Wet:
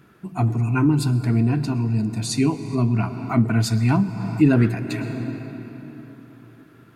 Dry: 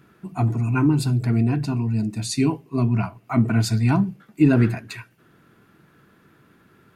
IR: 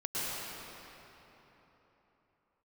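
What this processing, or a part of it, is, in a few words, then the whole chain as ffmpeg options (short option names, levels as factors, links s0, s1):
ducked reverb: -filter_complex "[0:a]asplit=3[s0][s1][s2];[1:a]atrim=start_sample=2205[s3];[s1][s3]afir=irnorm=-1:irlink=0[s4];[s2]apad=whole_len=306641[s5];[s4][s5]sidechaincompress=threshold=0.0398:ratio=6:attack=47:release=322,volume=0.266[s6];[s0][s6]amix=inputs=2:normalize=0"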